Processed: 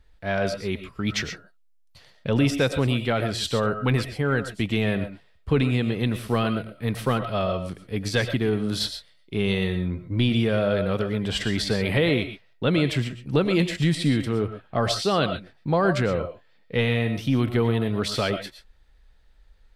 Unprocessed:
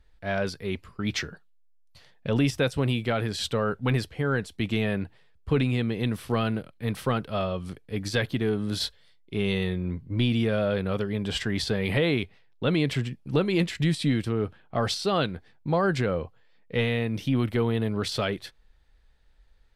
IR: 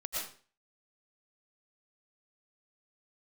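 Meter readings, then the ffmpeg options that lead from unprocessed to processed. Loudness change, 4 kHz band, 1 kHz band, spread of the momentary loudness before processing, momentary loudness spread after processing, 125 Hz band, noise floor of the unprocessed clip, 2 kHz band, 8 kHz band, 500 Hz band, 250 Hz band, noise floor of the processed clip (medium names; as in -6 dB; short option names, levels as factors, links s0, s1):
+3.0 dB, +3.0 dB, +3.0 dB, 8 LU, 8 LU, +2.5 dB, -58 dBFS, +3.0 dB, +3.0 dB, +3.0 dB, +2.5 dB, -58 dBFS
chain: -filter_complex "[0:a]asplit=2[s0][s1];[1:a]atrim=start_sample=2205,atrim=end_sample=6174[s2];[s1][s2]afir=irnorm=-1:irlink=0,volume=0.501[s3];[s0][s3]amix=inputs=2:normalize=0"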